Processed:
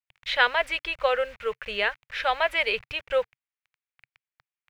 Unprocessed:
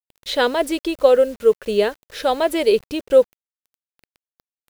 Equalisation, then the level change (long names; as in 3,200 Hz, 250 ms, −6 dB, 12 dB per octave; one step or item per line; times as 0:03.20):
drawn EQ curve 130 Hz 0 dB, 290 Hz −28 dB, 450 Hz −13 dB, 790 Hz −2 dB, 2,300 Hz +10 dB, 4,000 Hz −4 dB, 11,000 Hz −18 dB
−2.0 dB